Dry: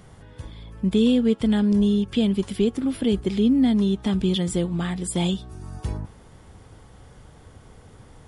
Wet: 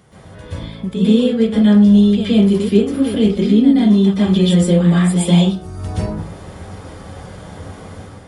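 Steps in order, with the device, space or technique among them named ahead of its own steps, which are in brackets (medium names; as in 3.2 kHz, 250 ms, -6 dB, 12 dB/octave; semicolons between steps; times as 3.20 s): far laptop microphone (reverberation RT60 0.40 s, pre-delay 117 ms, DRR -10 dB; high-pass 100 Hz 6 dB/octave; level rider gain up to 7 dB); trim -1 dB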